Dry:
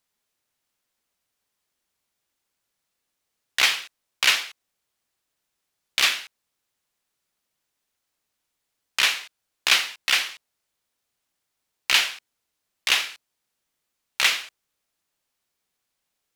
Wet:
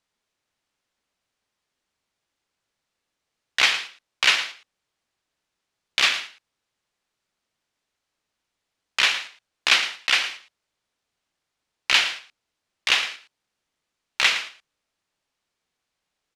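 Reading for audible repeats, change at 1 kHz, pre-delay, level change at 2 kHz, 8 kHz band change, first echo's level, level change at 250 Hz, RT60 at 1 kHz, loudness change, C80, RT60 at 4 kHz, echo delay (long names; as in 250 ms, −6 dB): 1, +2.0 dB, no reverb audible, +1.5 dB, −3.0 dB, −13.0 dB, +2.0 dB, no reverb audible, +0.5 dB, no reverb audible, no reverb audible, 113 ms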